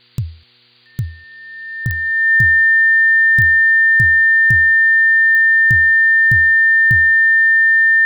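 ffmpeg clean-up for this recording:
ffmpeg -i in.wav -af "adeclick=threshold=4,bandreject=frequency=120.9:width_type=h:width=4,bandreject=frequency=241.8:width_type=h:width=4,bandreject=frequency=362.7:width_type=h:width=4,bandreject=frequency=483.6:width_type=h:width=4,bandreject=frequency=1800:width=30,afftdn=noise_reduction=20:noise_floor=-40" out.wav

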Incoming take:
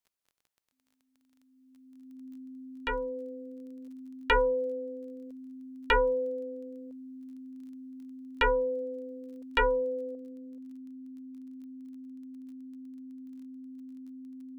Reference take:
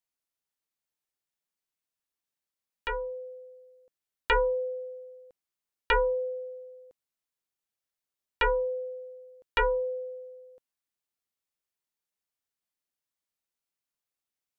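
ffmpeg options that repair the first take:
ffmpeg -i in.wav -af "adeclick=threshold=4,bandreject=frequency=260:width=30,asetnsamples=nb_out_samples=441:pad=0,asendcmd='10.15 volume volume 7.5dB',volume=0dB" out.wav

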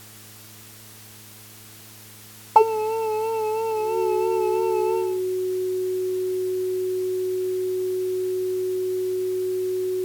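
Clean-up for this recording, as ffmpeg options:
ffmpeg -i in.wav -af "bandreject=frequency=107.3:width_type=h:width=4,bandreject=frequency=214.6:width_type=h:width=4,bandreject=frequency=321.9:width_type=h:width=4,bandreject=frequency=429.2:width_type=h:width=4,bandreject=frequency=370:width=30,afwtdn=0.0056" out.wav

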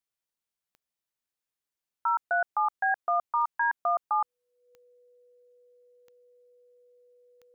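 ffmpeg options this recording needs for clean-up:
ffmpeg -i in.wav -af "adeclick=threshold=4,bandreject=frequency=490:width=30" out.wav

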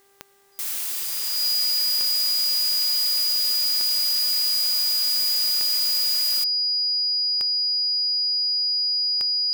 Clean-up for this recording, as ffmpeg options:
ffmpeg -i in.wav -af "adeclick=threshold=4,bandreject=frequency=396.6:width_type=h:width=4,bandreject=frequency=793.2:width_type=h:width=4,bandreject=frequency=1189.8:width_type=h:width=4,bandreject=frequency=1586.4:width_type=h:width=4,bandreject=frequency=1983:width_type=h:width=4,bandreject=frequency=4900:width=30,agate=range=-21dB:threshold=-20dB" out.wav

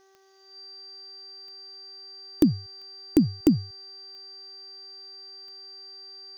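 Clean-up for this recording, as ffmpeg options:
ffmpeg -i in.wav -af "adeclick=threshold=4,bandreject=frequency=386.4:width_type=h:width=4,bandreject=frequency=772.8:width_type=h:width=4,bandreject=frequency=1159.2:width_type=h:width=4,bandreject=frequency=1545.6:width_type=h:width=4,bandreject=frequency=1932:width_type=h:width=4,bandreject=frequency=4700:width=30,afftdn=noise_reduction=30:noise_floor=-45" out.wav

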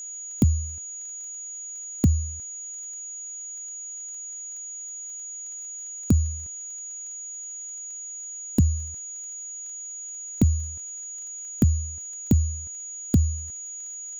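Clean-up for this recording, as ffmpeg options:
ffmpeg -i in.wav -af "adeclick=threshold=4,bandreject=frequency=6800:width=30,afftdn=noise_reduction=30:noise_floor=-37" out.wav

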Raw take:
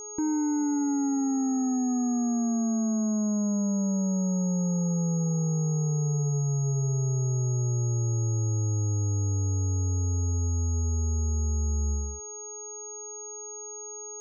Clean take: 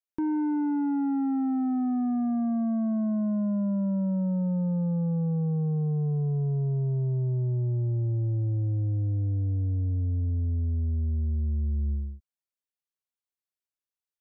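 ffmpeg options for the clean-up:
ffmpeg -i in.wav -af "bandreject=frequency=420.9:width_type=h:width=4,bandreject=frequency=841.8:width_type=h:width=4,bandreject=frequency=1262.7:width_type=h:width=4,bandreject=frequency=6600:width=30" out.wav

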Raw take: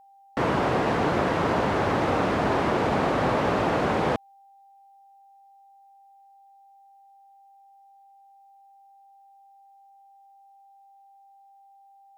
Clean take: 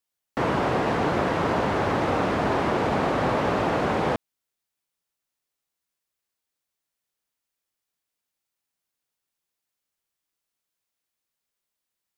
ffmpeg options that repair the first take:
ffmpeg -i in.wav -af "bandreject=frequency=790:width=30" out.wav

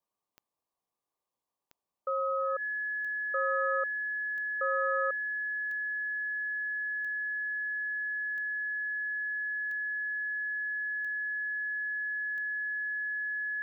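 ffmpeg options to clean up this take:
ffmpeg -i in.wav -af "adeclick=threshold=4,bandreject=frequency=1700:width=30,agate=range=-21dB:threshold=-82dB" out.wav

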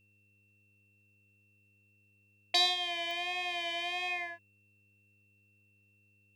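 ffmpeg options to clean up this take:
ffmpeg -i in.wav -af "adeclick=threshold=4,bandreject=frequency=102.2:width_type=h:width=4,bandreject=frequency=204.4:width_type=h:width=4,bandreject=frequency=306.6:width_type=h:width=4,bandreject=frequency=408.8:width_type=h:width=4,bandreject=frequency=511:width_type=h:width=4,bandreject=frequency=2700:width=30" out.wav

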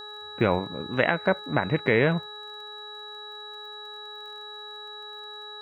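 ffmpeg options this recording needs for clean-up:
ffmpeg -i in.wav -af "adeclick=threshold=4,bandreject=frequency=420.8:width_type=h:width=4,bandreject=frequency=841.6:width_type=h:width=4,bandreject=frequency=1262.4:width_type=h:width=4,bandreject=frequency=1683.2:width_type=h:width=4,bandreject=frequency=3900:width=30,agate=range=-21dB:threshold=-33dB" out.wav

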